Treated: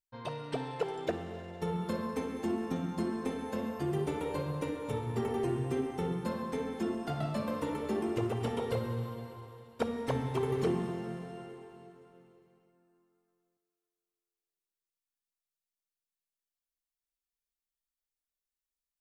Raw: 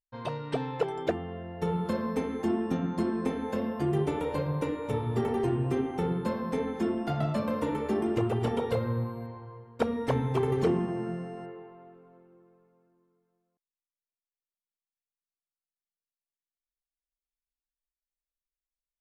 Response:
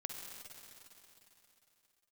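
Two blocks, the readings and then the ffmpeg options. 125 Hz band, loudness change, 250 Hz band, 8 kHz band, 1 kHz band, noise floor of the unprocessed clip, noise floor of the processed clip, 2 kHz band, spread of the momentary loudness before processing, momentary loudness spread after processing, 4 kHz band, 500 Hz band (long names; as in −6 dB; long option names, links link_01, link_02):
−5.0 dB, −4.5 dB, −5.0 dB, can't be measured, −4.0 dB, below −85 dBFS, below −85 dBFS, −3.5 dB, 9 LU, 10 LU, −1.5 dB, −4.5 dB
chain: -filter_complex "[0:a]asplit=2[link_01][link_02];[1:a]atrim=start_sample=2205,highshelf=frequency=2600:gain=11.5[link_03];[link_02][link_03]afir=irnorm=-1:irlink=0,volume=-3.5dB[link_04];[link_01][link_04]amix=inputs=2:normalize=0,volume=-8dB"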